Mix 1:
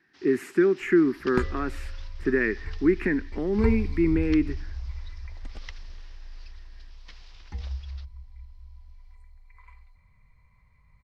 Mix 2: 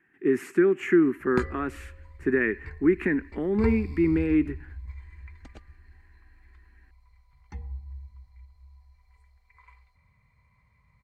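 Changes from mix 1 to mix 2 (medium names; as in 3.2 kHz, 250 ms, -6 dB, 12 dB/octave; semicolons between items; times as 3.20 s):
first sound: muted; second sound: add high-pass 69 Hz 12 dB/octave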